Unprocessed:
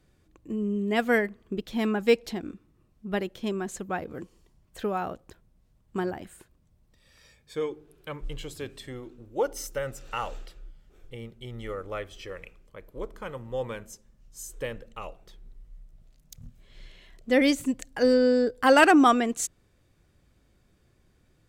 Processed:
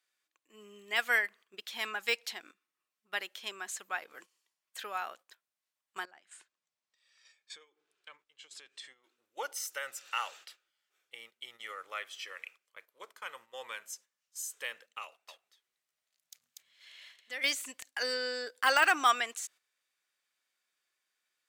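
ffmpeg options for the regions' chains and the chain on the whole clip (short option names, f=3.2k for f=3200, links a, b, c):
-filter_complex "[0:a]asettb=1/sr,asplit=3[a][b][c];[a]atrim=end=6.054[d];[b]atrim=start=6.05:end=9.04,asetpts=PTS-STARTPTS,afade=t=in:d=0.004:c=qsin,afade=t=out:st=2.986:d=0.004:c=qsin,lowpass=f=8.2k:w=0.5412,lowpass=f=8.2k:w=1.3066,lowshelf=f=480:g=4.5,acompressor=threshold=-42dB:ratio=8:attack=3.2:release=140:knee=1:detection=peak[e];[c]atrim=start=9.036[f];[d][e]acrossfade=d=0.004:c1=hsin:c2=qsin[g];[g][f]acrossfade=d=0.004:c1=qsin:c2=hsin,asettb=1/sr,asplit=3[h][i][j];[h]atrim=end=15.044[k];[i]atrim=start=15.04:end=17.44,asetpts=PTS-STARTPTS,afade=t=in:d=0.004:c=qsin,afade=t=out:st=2.396:d=0.004:c=qsin,acompressor=threshold=-38dB:ratio=2:attack=3.2:release=140:knee=1:detection=peak,aecho=1:1:241:0.668,atrim=end_sample=105840[l];[j]atrim=start=17.436[m];[k][l]acrossfade=d=0.004:c1=hsin:c2=qsin[n];[n][m]acrossfade=d=0.004:c1=qsin:c2=hsin,highpass=1.5k,deesser=0.75,agate=range=-10dB:threshold=-57dB:ratio=16:detection=peak,volume=3dB"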